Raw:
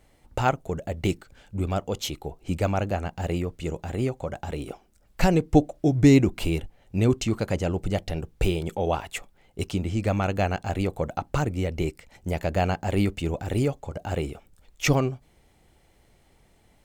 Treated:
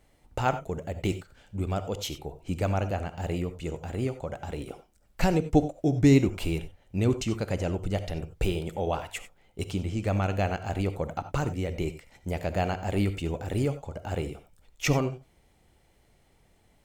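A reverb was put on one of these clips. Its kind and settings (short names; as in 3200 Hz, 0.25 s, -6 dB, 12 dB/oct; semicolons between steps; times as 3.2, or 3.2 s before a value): non-linear reverb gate 0.11 s rising, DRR 11.5 dB; gain -3.5 dB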